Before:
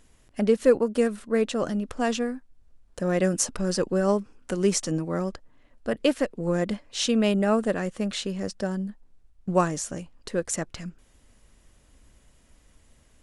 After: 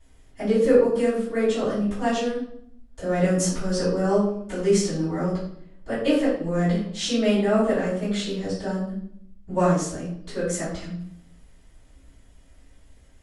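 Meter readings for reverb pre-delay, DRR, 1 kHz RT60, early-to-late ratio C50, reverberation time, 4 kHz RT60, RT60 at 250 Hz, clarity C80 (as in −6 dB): 3 ms, −15.0 dB, 0.60 s, 2.5 dB, 0.65 s, 0.55 s, 0.90 s, 6.5 dB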